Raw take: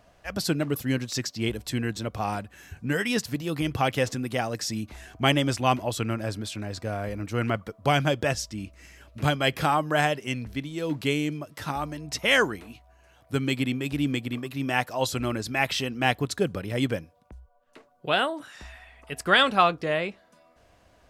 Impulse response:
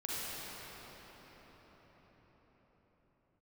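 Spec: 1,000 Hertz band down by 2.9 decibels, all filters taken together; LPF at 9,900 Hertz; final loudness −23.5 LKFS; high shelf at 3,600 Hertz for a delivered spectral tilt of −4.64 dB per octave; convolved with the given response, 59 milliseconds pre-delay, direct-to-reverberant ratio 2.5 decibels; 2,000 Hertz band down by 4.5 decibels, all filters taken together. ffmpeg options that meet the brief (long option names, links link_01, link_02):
-filter_complex "[0:a]lowpass=9900,equalizer=frequency=1000:width_type=o:gain=-3,equalizer=frequency=2000:width_type=o:gain=-6.5,highshelf=frequency=3600:gain=5.5,asplit=2[link_01][link_02];[1:a]atrim=start_sample=2205,adelay=59[link_03];[link_02][link_03]afir=irnorm=-1:irlink=0,volume=-7dB[link_04];[link_01][link_04]amix=inputs=2:normalize=0,volume=3dB"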